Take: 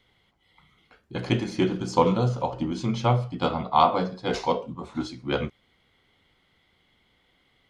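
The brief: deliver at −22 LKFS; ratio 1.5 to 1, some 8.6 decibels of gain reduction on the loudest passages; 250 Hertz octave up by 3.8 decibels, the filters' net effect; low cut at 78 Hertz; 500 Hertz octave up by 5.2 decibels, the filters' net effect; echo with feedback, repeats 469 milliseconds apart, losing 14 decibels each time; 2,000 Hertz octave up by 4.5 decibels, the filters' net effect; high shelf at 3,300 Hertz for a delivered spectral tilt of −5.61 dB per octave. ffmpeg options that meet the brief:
ffmpeg -i in.wav -af "highpass=78,equalizer=frequency=250:width_type=o:gain=3.5,equalizer=frequency=500:width_type=o:gain=5,equalizer=frequency=2000:width_type=o:gain=7,highshelf=frequency=3300:gain=-4,acompressor=threshold=-35dB:ratio=1.5,aecho=1:1:469|938:0.2|0.0399,volume=7.5dB" out.wav

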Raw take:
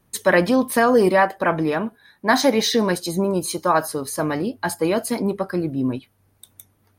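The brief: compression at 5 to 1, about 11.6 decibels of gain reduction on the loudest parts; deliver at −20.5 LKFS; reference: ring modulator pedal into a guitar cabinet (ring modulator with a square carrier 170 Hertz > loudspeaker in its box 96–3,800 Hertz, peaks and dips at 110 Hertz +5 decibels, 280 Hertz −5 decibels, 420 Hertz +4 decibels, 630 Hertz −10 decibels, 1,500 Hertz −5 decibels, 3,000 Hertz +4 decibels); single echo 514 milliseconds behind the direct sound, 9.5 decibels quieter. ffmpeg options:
ffmpeg -i in.wav -af "acompressor=threshold=-25dB:ratio=5,aecho=1:1:514:0.335,aeval=exprs='val(0)*sgn(sin(2*PI*170*n/s))':channel_layout=same,highpass=96,equalizer=frequency=110:width_type=q:width=4:gain=5,equalizer=frequency=280:width_type=q:width=4:gain=-5,equalizer=frequency=420:width_type=q:width=4:gain=4,equalizer=frequency=630:width_type=q:width=4:gain=-10,equalizer=frequency=1500:width_type=q:width=4:gain=-5,equalizer=frequency=3000:width_type=q:width=4:gain=4,lowpass=frequency=3800:width=0.5412,lowpass=frequency=3800:width=1.3066,volume=10dB" out.wav

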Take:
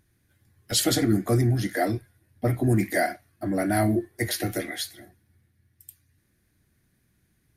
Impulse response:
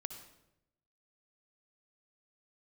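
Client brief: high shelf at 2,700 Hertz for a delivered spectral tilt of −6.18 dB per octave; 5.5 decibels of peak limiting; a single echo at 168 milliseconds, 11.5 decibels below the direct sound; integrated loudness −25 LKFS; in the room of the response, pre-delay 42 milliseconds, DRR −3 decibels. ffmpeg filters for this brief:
-filter_complex "[0:a]highshelf=frequency=2700:gain=-7.5,alimiter=limit=-16.5dB:level=0:latency=1,aecho=1:1:168:0.266,asplit=2[link_01][link_02];[1:a]atrim=start_sample=2205,adelay=42[link_03];[link_02][link_03]afir=irnorm=-1:irlink=0,volume=5.5dB[link_04];[link_01][link_04]amix=inputs=2:normalize=0,volume=-2.5dB"

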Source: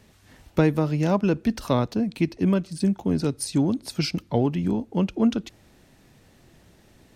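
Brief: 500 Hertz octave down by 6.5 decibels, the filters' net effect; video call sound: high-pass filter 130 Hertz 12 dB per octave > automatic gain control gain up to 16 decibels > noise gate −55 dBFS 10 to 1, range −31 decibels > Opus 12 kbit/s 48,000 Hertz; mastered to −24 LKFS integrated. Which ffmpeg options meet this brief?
ffmpeg -i in.wav -af "highpass=130,equalizer=frequency=500:width_type=o:gain=-8.5,dynaudnorm=maxgain=16dB,agate=range=-31dB:threshold=-55dB:ratio=10,volume=3.5dB" -ar 48000 -c:a libopus -b:a 12k out.opus

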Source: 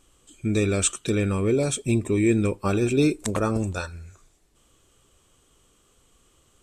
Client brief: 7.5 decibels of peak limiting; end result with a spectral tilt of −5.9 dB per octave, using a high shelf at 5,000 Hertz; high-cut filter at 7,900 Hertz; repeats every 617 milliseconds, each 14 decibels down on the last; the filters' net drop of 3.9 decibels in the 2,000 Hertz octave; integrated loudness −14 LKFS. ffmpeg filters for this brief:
ffmpeg -i in.wav -af "lowpass=7900,equalizer=frequency=2000:width_type=o:gain=-4.5,highshelf=frequency=5000:gain=-3.5,alimiter=limit=-17dB:level=0:latency=1,aecho=1:1:617|1234:0.2|0.0399,volume=12.5dB" out.wav

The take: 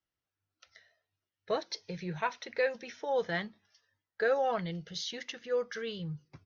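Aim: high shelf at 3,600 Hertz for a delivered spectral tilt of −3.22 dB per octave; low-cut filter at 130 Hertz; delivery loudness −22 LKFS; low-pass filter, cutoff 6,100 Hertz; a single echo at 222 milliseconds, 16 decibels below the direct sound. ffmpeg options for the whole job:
ffmpeg -i in.wav -af "highpass=130,lowpass=6100,highshelf=frequency=3600:gain=-4,aecho=1:1:222:0.158,volume=13dB" out.wav

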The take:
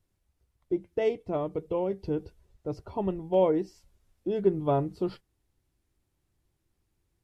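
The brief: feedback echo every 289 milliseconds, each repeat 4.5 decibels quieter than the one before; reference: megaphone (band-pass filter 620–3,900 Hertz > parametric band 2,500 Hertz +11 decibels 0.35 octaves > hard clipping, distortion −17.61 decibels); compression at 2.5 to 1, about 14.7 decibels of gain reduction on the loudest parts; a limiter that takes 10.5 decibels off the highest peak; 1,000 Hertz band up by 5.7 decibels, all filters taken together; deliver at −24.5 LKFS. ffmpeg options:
ffmpeg -i in.wav -af "equalizer=frequency=1000:width_type=o:gain=9,acompressor=threshold=-39dB:ratio=2.5,alimiter=level_in=9dB:limit=-24dB:level=0:latency=1,volume=-9dB,highpass=620,lowpass=3900,equalizer=frequency=2500:width_type=o:width=0.35:gain=11,aecho=1:1:289|578|867|1156|1445|1734|2023|2312|2601:0.596|0.357|0.214|0.129|0.0772|0.0463|0.0278|0.0167|0.01,asoftclip=type=hard:threshold=-39.5dB,volume=24.5dB" out.wav

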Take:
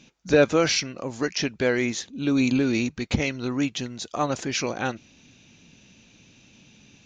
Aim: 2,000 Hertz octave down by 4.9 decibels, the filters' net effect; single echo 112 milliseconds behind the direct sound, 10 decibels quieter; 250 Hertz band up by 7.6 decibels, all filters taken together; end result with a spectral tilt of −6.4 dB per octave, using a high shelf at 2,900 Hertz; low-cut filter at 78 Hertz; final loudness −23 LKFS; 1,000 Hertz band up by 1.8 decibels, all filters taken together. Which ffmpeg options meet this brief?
ffmpeg -i in.wav -af "highpass=78,equalizer=frequency=250:width_type=o:gain=8.5,equalizer=frequency=1000:width_type=o:gain=4.5,equalizer=frequency=2000:width_type=o:gain=-4.5,highshelf=frequency=2900:gain=-9,aecho=1:1:112:0.316,volume=-3dB" out.wav

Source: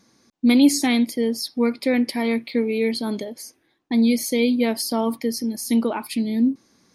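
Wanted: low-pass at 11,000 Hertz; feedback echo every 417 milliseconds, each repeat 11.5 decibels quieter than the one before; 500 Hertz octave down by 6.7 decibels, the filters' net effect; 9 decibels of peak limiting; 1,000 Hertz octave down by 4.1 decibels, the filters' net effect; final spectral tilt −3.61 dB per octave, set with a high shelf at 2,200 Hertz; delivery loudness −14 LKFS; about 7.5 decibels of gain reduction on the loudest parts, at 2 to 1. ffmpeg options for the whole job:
ffmpeg -i in.wav -af "lowpass=11000,equalizer=frequency=500:width_type=o:gain=-7,equalizer=frequency=1000:width_type=o:gain=-3.5,highshelf=frequency=2200:gain=5.5,acompressor=threshold=-27dB:ratio=2,alimiter=limit=-22.5dB:level=0:latency=1,aecho=1:1:417|834|1251:0.266|0.0718|0.0194,volume=16.5dB" out.wav

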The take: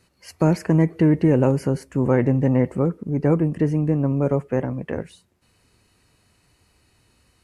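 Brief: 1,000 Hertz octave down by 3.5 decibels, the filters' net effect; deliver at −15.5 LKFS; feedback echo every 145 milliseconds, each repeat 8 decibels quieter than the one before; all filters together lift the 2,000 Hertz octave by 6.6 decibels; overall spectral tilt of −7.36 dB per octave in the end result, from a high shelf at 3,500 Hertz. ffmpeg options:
ffmpeg -i in.wav -af "equalizer=frequency=1000:width_type=o:gain=-7.5,equalizer=frequency=2000:width_type=o:gain=8,highshelf=frequency=3500:gain=8,aecho=1:1:145|290|435|580|725:0.398|0.159|0.0637|0.0255|0.0102,volume=4.5dB" out.wav

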